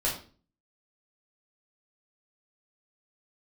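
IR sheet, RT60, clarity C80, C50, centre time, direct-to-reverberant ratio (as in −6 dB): 0.40 s, 11.5 dB, 7.0 dB, 29 ms, −5.5 dB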